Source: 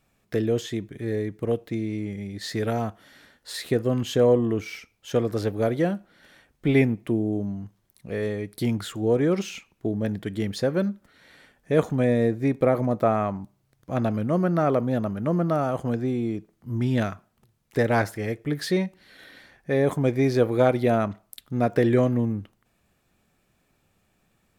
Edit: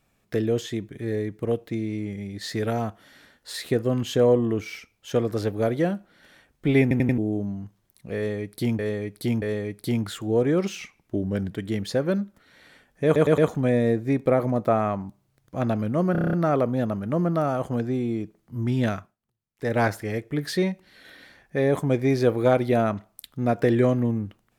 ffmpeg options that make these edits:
-filter_complex "[0:a]asplit=21[s0][s1][s2][s3][s4][s5][s6][s7][s8][s9][s10][s11][s12][s13][s14][s15][s16][s17][s18][s19][s20];[s0]atrim=end=6.912[s21];[s1]atrim=start=6.818:end=6.912[s22];[s2]atrim=start=6.818:end=6.912[s23];[s3]atrim=start=6.818:end=6.912[s24];[s4]atrim=start=7.178:end=8.792[s25];[s5]atrim=start=8.158:end=8.792[s26];[s6]atrim=start=8.158:end=9.524[s27];[s7]atrim=start=9.52:end=10.2,asetpts=PTS-STARTPTS,asetrate=40572,aresample=44100[s28];[s8]atrim=start=10.196:end=11.842[s29];[s9]atrim=start=11.728:end=11.842[s30];[s10]atrim=start=11.728:end=11.842[s31];[s11]atrim=start=11.728:end=14.502[s32];[s12]atrim=start=14.468:end=14.502[s33];[s13]atrim=start=14.468:end=14.502[s34];[s14]atrim=start=14.468:end=14.502[s35];[s15]atrim=start=14.468:end=14.502[s36];[s16]atrim=start=14.468:end=14.502[s37];[s17]atrim=start=14.468:end=14.502[s38];[s18]atrim=start=14.468:end=17.31,asetpts=PTS-STARTPTS,afade=t=out:st=2.652:d=0.19:silence=0.11885[s39];[s19]atrim=start=17.31:end=17.71,asetpts=PTS-STARTPTS,volume=0.119[s40];[s20]atrim=start=17.71,asetpts=PTS-STARTPTS,afade=t=in:d=0.19:silence=0.11885[s41];[s21][s22]acrossfade=d=0.004:c1=hsin:c2=hsin[s42];[s42][s23]acrossfade=d=0.004:c1=hsin:c2=hsin[s43];[s43][s24]acrossfade=d=0.004:c1=hsin:c2=hsin[s44];[s44][s25]acrossfade=d=0.004:c1=hsin:c2=hsin[s45];[s45][s26]acrossfade=d=0.004:c1=hsin:c2=hsin[s46];[s46][s27]acrossfade=d=0.004:c1=hsin:c2=hsin[s47];[s47][s28]acrossfade=d=0.004:c1=hsin:c2=hsin[s48];[s48][s29]acrossfade=d=0.004:c1=hsin:c2=hsin[s49];[s49][s30]acrossfade=d=0.004:c1=hsin:c2=hsin[s50];[s50][s31]acrossfade=d=0.004:c1=hsin:c2=hsin[s51];[s51][s32]acrossfade=d=0.004:c1=hsin:c2=hsin[s52];[s52][s33]acrossfade=d=0.004:c1=hsin:c2=hsin[s53];[s53][s34]acrossfade=d=0.004:c1=hsin:c2=hsin[s54];[s54][s35]acrossfade=d=0.004:c1=hsin:c2=hsin[s55];[s55][s36]acrossfade=d=0.004:c1=hsin:c2=hsin[s56];[s56][s37]acrossfade=d=0.004:c1=hsin:c2=hsin[s57];[s57][s38]acrossfade=d=0.004:c1=hsin:c2=hsin[s58];[s39][s40][s41]concat=n=3:v=0:a=1[s59];[s58][s59]acrossfade=d=0.004:c1=hsin:c2=hsin"

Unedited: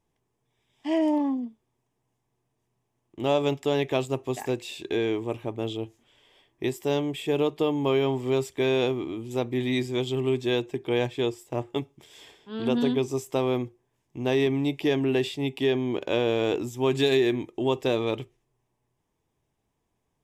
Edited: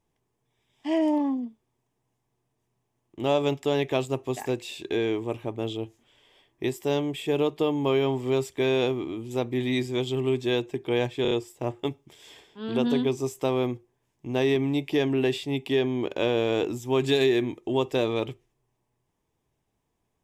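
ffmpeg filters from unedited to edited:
-filter_complex "[0:a]asplit=4[s0][s1][s2][s3];[s0]atrim=end=11.252[s4];[s1]atrim=start=11.218:end=11.252[s5];[s2]atrim=start=11.218:end=11.252[s6];[s3]atrim=start=11.218[s7];[s4][s5]acrossfade=d=0.004:c1=hsin:c2=hsin[s8];[s8][s6]acrossfade=d=0.004:c1=hsin:c2=hsin[s9];[s9][s7]acrossfade=d=0.004:c1=hsin:c2=hsin"

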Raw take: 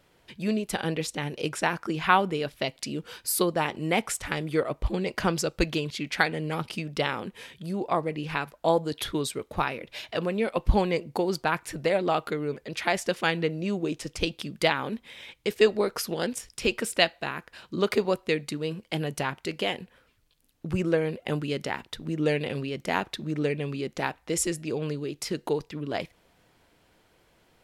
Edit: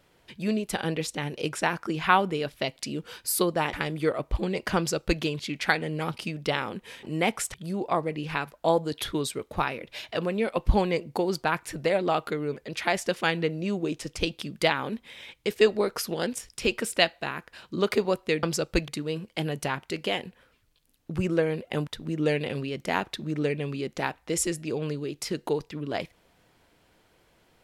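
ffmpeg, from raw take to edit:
-filter_complex "[0:a]asplit=7[s0][s1][s2][s3][s4][s5][s6];[s0]atrim=end=3.732[s7];[s1]atrim=start=4.238:end=7.542[s8];[s2]atrim=start=3.728:end=4.242[s9];[s3]atrim=start=7.538:end=18.432[s10];[s4]atrim=start=5.278:end=5.732[s11];[s5]atrim=start=18.428:end=21.422[s12];[s6]atrim=start=21.868[s13];[s7][s8]acrossfade=d=0.004:c1=hsin:c2=hsin[s14];[s14][s9]acrossfade=d=0.004:c1=hsin:c2=hsin[s15];[s15][s10]acrossfade=d=0.004:c1=hsin:c2=hsin[s16];[s16][s11]acrossfade=d=0.004:c1=hsin:c2=hsin[s17];[s17][s12]acrossfade=d=0.004:c1=hsin:c2=hsin[s18];[s18][s13]acrossfade=d=0.004:c1=hsin:c2=hsin"

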